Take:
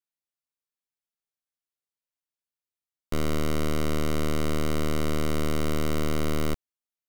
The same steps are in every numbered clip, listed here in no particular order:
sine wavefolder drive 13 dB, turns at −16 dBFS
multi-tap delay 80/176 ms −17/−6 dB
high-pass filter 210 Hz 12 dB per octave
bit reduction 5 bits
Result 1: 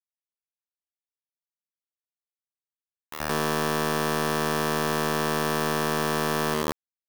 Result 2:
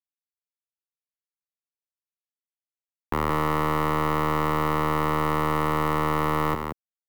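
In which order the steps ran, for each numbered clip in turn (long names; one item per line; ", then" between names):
high-pass filter, then bit reduction, then multi-tap delay, then sine wavefolder
bit reduction, then high-pass filter, then sine wavefolder, then multi-tap delay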